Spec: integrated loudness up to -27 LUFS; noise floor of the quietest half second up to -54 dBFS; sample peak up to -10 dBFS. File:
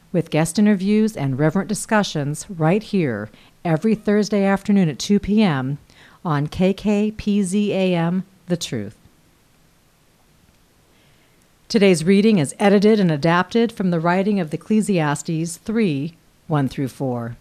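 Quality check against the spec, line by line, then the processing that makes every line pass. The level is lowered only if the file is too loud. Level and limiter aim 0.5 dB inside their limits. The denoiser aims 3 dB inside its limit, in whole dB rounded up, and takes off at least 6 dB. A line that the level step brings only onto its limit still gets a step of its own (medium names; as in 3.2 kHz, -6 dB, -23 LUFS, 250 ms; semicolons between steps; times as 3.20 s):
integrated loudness -19.5 LUFS: fail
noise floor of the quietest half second -56 dBFS: pass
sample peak -5.0 dBFS: fail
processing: trim -8 dB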